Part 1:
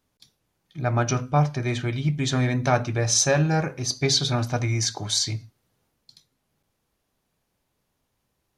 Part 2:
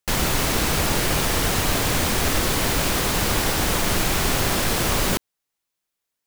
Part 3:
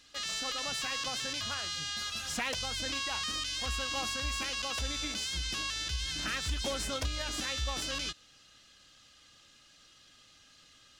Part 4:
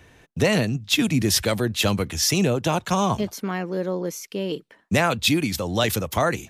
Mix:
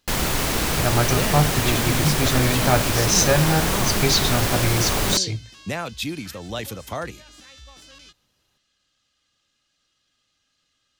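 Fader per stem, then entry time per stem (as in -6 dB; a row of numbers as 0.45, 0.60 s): +1.5, -1.0, -11.5, -8.5 dB; 0.00, 0.00, 0.00, 0.75 s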